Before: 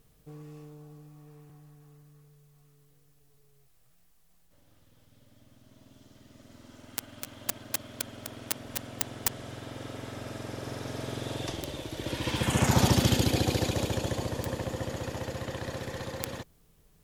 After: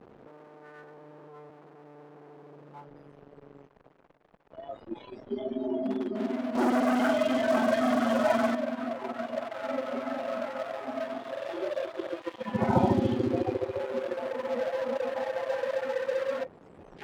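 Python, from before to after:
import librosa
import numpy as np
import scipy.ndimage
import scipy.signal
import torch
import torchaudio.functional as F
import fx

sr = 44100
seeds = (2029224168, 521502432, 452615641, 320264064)

y = fx.delta_mod(x, sr, bps=64000, step_db=-25.0)
y = fx.rider(y, sr, range_db=3, speed_s=0.5)
y = scipy.signal.sosfilt(scipy.signal.bessel(2, 1400.0, 'lowpass', norm='mag', fs=sr, output='sos'), y)
y = fx.tilt_eq(y, sr, slope=-4.5)
y = fx.echo_feedback(y, sr, ms=295, feedback_pct=51, wet_db=-19)
y = fx.noise_reduce_blind(y, sr, reduce_db=24)
y = fx.leveller(y, sr, passes=3, at=(6.55, 8.55))
y = np.sign(y) * np.maximum(np.abs(y) - 10.0 ** (-43.5 / 20.0), 0.0)
y = scipy.signal.sosfilt(scipy.signal.butter(2, 420.0, 'highpass', fs=sr, output='sos'), y)
y = y * 10.0 ** (8.0 / 20.0)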